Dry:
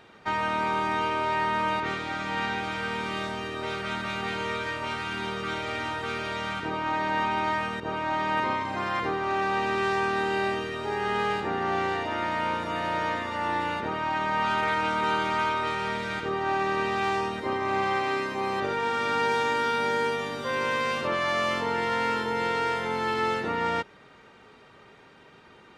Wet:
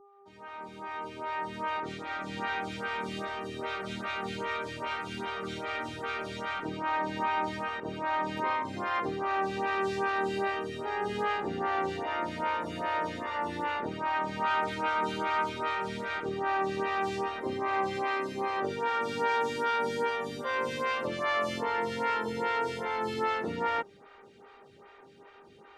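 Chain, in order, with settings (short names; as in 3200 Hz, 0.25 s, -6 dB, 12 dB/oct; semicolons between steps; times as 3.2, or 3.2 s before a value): opening faded in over 2.57 s; buzz 400 Hz, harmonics 3, -55 dBFS; photocell phaser 2.5 Hz; gain -1 dB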